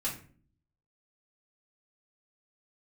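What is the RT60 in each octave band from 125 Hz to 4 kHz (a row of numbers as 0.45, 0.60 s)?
0.85, 0.75, 0.50, 0.40, 0.40, 0.30 s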